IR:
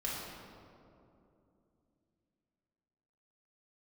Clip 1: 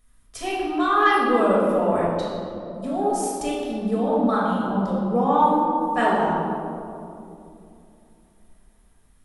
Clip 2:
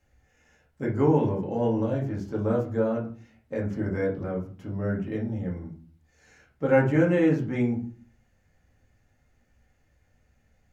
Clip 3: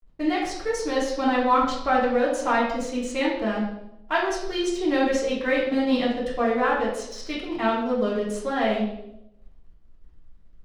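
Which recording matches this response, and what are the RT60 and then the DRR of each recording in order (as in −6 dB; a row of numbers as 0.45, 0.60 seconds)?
1; 2.8, 0.45, 0.80 seconds; −6.5, −3.0, −8.5 decibels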